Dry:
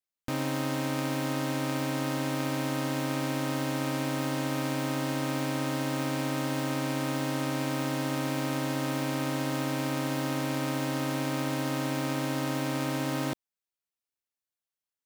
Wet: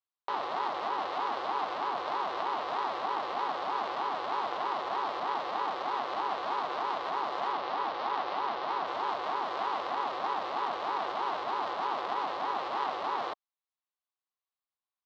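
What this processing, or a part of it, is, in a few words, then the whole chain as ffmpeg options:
voice changer toy: -filter_complex "[0:a]asettb=1/sr,asplit=3[a][b][c];[a]atrim=end=7.524[d];[b]atrim=start=7.52:end=8.86,asetpts=PTS-STARTPTS,afade=t=in:d=0.004:c=qsin,afade=t=out:st=1.336:d=0.004:c=qsin,lowpass=f=6k:w=0.5412,lowpass=f=6k:w=1.3066[e];[c]atrim=start=8.856[f];[d][e]acrossfade=d=0.004:c1=hsin:c2=qsin[g];[g][f]acrossfade=d=0.004:c1=qsin:c2=hsin,aeval=exprs='val(0)*sin(2*PI*460*n/s+460*0.55/3.2*sin(2*PI*3.2*n/s))':c=same,highpass=490,equalizer=f=520:t=q:w=4:g=-4,equalizer=f=760:t=q:w=4:g=5,equalizer=f=1.1k:t=q:w=4:g=9,equalizer=f=1.7k:t=q:w=4:g=-3,equalizer=f=2.4k:t=q:w=4:g=-5,equalizer=f=4k:t=q:w=4:g=3,lowpass=f=4.1k:w=0.5412,lowpass=f=4.1k:w=1.3066"

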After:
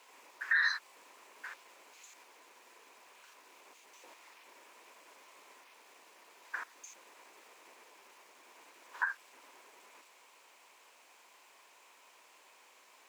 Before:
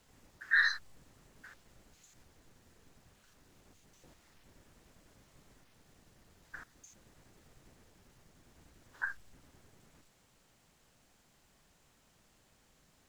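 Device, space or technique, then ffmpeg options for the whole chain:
laptop speaker: -af "highpass=f=380:w=0.5412,highpass=f=380:w=1.3066,equalizer=f=1k:t=o:w=0.35:g=11,equalizer=f=2.4k:t=o:w=0.49:g=9,alimiter=level_in=1.5dB:limit=-24dB:level=0:latency=1:release=176,volume=-1.5dB,volume=5.5dB"

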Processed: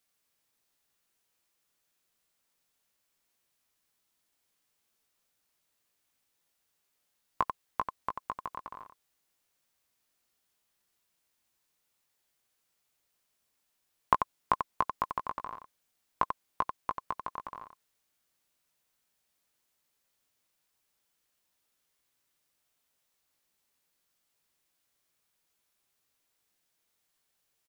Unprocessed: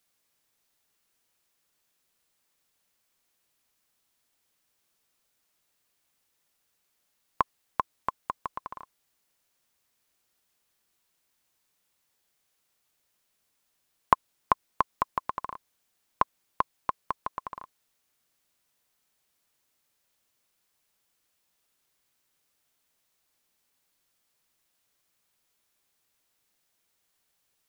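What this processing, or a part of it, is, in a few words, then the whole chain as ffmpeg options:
slapback doubling: -filter_complex "[0:a]asplit=3[a][b][c];[b]adelay=18,volume=-7dB[d];[c]adelay=90,volume=-7dB[e];[a][d][e]amix=inputs=3:normalize=0,volume=-4.5dB"

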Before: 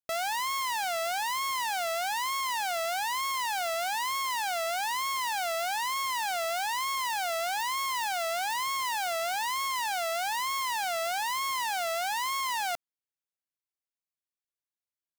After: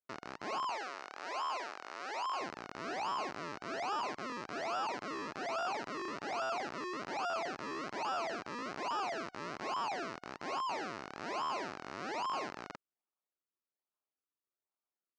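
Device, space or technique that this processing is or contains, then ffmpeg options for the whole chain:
circuit-bent sampling toy: -filter_complex "[0:a]acrusher=samples=41:mix=1:aa=0.000001:lfo=1:lforange=41:lforate=1.2,highpass=430,equalizer=f=500:t=q:w=4:g=-7,equalizer=f=1.3k:t=q:w=4:g=5,equalizer=f=3.4k:t=q:w=4:g=-9,lowpass=f=5.6k:w=0.5412,lowpass=f=5.6k:w=1.3066,asettb=1/sr,asplit=3[a][b][c];[a]atrim=end=0.704[d];[b]atrim=start=0.7:end=2.4,asetpts=PTS-STARTPTS,afade=t=in:d=0.004:c=qsin,afade=t=out:st=1.696:d=0.004:c=qsin,highpass=520[e];[c]atrim=start=2.396[f];[d][e]acrossfade=d=0.004:c1=hsin:c2=qsin[g];[g][f]acrossfade=d=0.004:c1=qsin:c2=hsin,volume=-4dB"

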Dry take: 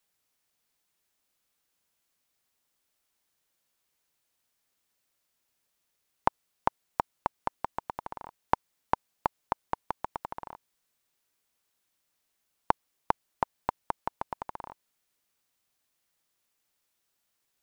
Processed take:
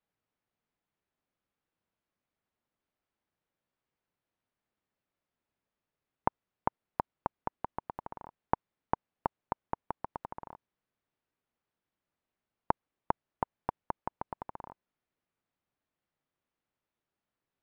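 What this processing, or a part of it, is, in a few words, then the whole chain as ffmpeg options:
phone in a pocket: -af "lowpass=3.5k,equalizer=f=160:t=o:w=2.4:g=4,highshelf=f=2.3k:g=-11,volume=-3dB"

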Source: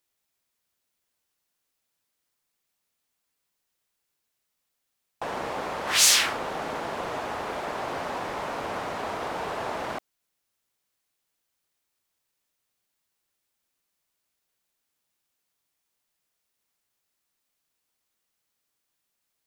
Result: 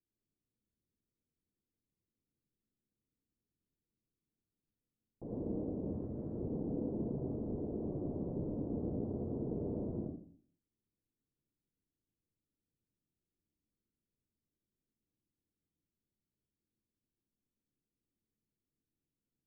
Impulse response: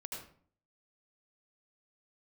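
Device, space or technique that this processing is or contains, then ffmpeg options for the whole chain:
next room: -filter_complex "[0:a]lowpass=f=340:w=0.5412,lowpass=f=340:w=1.3066[a];[1:a]atrim=start_sample=2205[b];[a][b]afir=irnorm=-1:irlink=0,asettb=1/sr,asplit=3[c][d][e];[c]atrim=end=5.694[f];[d]atrim=start=5.69:end=6.52,asetpts=PTS-STARTPTS,afade=t=in:d=0.004:c=qsin,afade=t=out:st=0.826:d=0.004:c=qsin,lowpass=f=1.3k:p=1[g];[e]atrim=start=6.516[h];[f][g]acrossfade=d=0.004:c1=hsin:c2=qsin[i];[i][h]acrossfade=d=0.004:c1=qsin:c2=hsin,volume=5.5dB"

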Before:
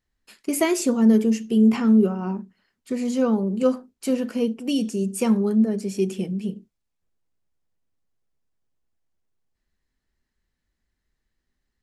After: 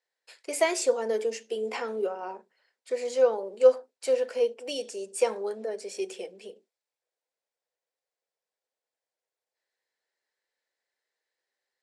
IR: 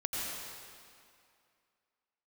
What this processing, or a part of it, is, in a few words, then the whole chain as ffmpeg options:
phone speaker on a table: -af "highpass=f=500:w=0.5412,highpass=f=500:w=1.3066,equalizer=f=500:t=q:w=4:g=7,equalizer=f=1.2k:t=q:w=4:g=-7,equalizer=f=2.9k:t=q:w=4:g=-4,equalizer=f=6.4k:t=q:w=4:g=-4,lowpass=f=8.9k:w=0.5412,lowpass=f=8.9k:w=1.3066"

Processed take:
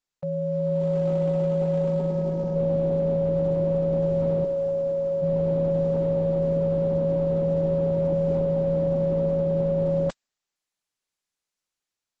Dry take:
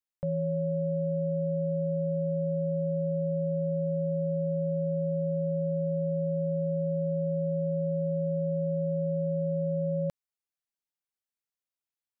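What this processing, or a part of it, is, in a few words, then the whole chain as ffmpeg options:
video call: -filter_complex "[0:a]asplit=3[a][b][c];[a]afade=t=out:st=4.44:d=0.02[d];[b]highpass=290,afade=t=in:st=4.44:d=0.02,afade=t=out:st=5.21:d=0.02[e];[c]afade=t=in:st=5.21:d=0.02[f];[d][e][f]amix=inputs=3:normalize=0,highpass=f=170:p=1,dynaudnorm=f=240:g=5:m=5.5dB,volume=2.5dB" -ar 48000 -c:a libopus -b:a 12k

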